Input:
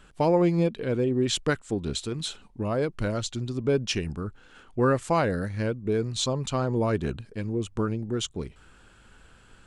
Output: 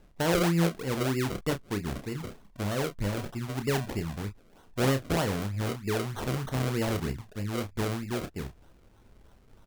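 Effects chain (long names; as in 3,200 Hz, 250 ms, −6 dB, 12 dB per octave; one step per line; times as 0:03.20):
low-shelf EQ 350 Hz +5.5 dB
sample-and-hold swept by an LFO 35×, swing 100% 3.2 Hz
double-tracking delay 30 ms −8.5 dB
level −7 dB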